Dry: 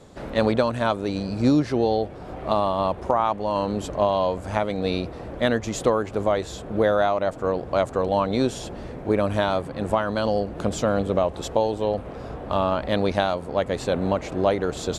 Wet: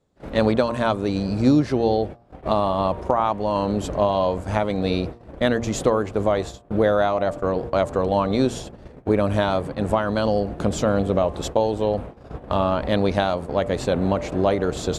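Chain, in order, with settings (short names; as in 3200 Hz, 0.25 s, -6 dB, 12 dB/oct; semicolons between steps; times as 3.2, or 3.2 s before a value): gate -32 dBFS, range -27 dB; low shelf 380 Hz +3.5 dB; de-hum 117.5 Hz, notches 10; in parallel at -1.5 dB: compressor, threshold -28 dBFS, peak gain reduction 15 dB; on the sum: gain -1.5 dB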